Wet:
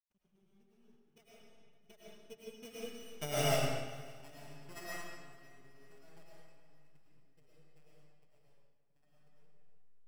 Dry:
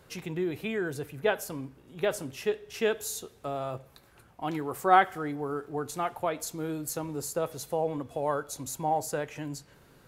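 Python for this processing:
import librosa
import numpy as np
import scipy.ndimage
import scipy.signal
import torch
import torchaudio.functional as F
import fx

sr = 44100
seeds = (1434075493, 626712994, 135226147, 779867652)

y = np.r_[np.sort(x[:len(x) // 16 * 16].reshape(-1, 16), axis=1).ravel(), x[len(x) // 16 * 16:]]
y = fx.doppler_pass(y, sr, speed_mps=23, closest_m=1.9, pass_at_s=3.39)
y = fx.bass_treble(y, sr, bass_db=10, treble_db=4)
y = y + 0.41 * np.pad(y, (int(4.8 * sr / 1000.0), 0))[:len(y)]
y = fx.transient(y, sr, attack_db=9, sustain_db=-8)
y = fx.backlash(y, sr, play_db=-49.5)
y = fx.filter_lfo_notch(y, sr, shape='saw_down', hz=8.3, low_hz=250.0, high_hz=4000.0, q=2.9)
y = fx.echo_swing(y, sr, ms=937, ratio=1.5, feedback_pct=32, wet_db=-19.5)
y = fx.rev_freeverb(y, sr, rt60_s=2.0, hf_ratio=0.85, predelay_ms=65, drr_db=-7.5)
y = fx.upward_expand(y, sr, threshold_db=-49.0, expansion=1.5)
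y = y * librosa.db_to_amplitude(-6.0)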